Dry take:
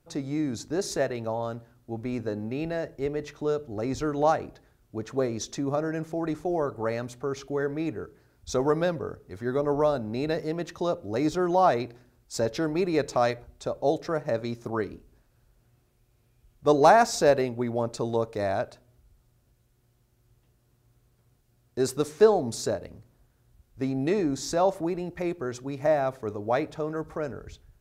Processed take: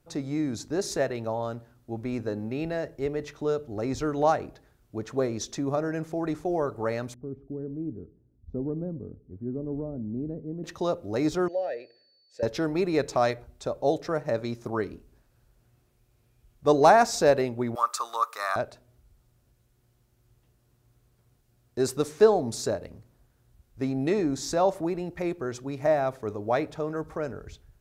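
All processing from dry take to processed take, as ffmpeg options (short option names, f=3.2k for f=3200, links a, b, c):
-filter_complex "[0:a]asettb=1/sr,asplit=3[a][b][c];[a]atrim=end=7.144[d];[b]atrim=start=7.14:end=10.64,asetpts=PTS-STARTPTS,afade=t=in:d=0.004:c=qsin,afade=t=out:st=3.496:d=0.004:c=qsin,lowpass=f=230:t=q:w=1.8,equalizer=f=170:w=1:g=-5.5[e];[c]atrim=start=10.636[f];[d][e]acrossfade=d=0.004:c1=hsin:c2=qsin[g];[g][f]acrossfade=d=0.004:c1=qsin:c2=hsin,asettb=1/sr,asplit=3[h][i][j];[h]atrim=end=11.484[k];[i]atrim=start=11.48:end=12.43,asetpts=PTS-STARTPTS,afade=t=in:d=0.004:c=qsin,afade=t=out:st=0.946:d=0.004:c=qsin,highshelf=f=4.5k:g=5.5,aeval=exprs='val(0)+0.01*sin(2*PI*4500*n/s)':c=same,asplit=3[l][m][n];[l]bandpass=f=530:t=q:w=8,volume=0dB[o];[m]bandpass=f=1.84k:t=q:w=8,volume=-6dB[p];[n]bandpass=f=2.48k:t=q:w=8,volume=-9dB[q];[o][p][q]amix=inputs=3:normalize=0[r];[j]atrim=start=12.426[s];[k][r]acrossfade=d=0.004:c1=hsin:c2=qsin[t];[t][s]acrossfade=d=0.004:c1=qsin:c2=hsin,asettb=1/sr,asplit=3[u][v][w];[u]atrim=end=17.754[x];[v]atrim=start=17.75:end=18.56,asetpts=PTS-STARTPTS,afade=t=in:d=0.004:c=qsin,afade=t=out:st=0.806:d=0.004:c=qsin,highpass=f=1.2k:t=q:w=14,aemphasis=mode=production:type=50fm[y];[w]atrim=start=18.556[z];[x][y]acrossfade=d=0.004:c1=hsin:c2=qsin[aa];[aa][z]acrossfade=d=0.004:c1=qsin:c2=hsin"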